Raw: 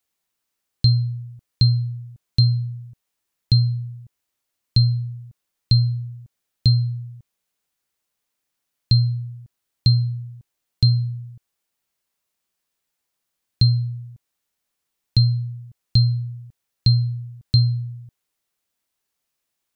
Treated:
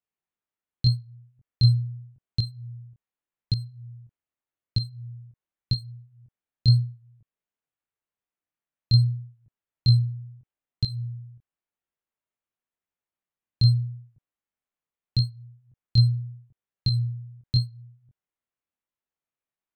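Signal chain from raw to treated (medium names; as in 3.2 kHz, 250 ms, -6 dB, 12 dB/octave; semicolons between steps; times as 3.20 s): local Wiener filter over 9 samples; chorus 0.84 Hz, delay 20 ms, depth 5.9 ms; upward expansion 1.5:1, over -26 dBFS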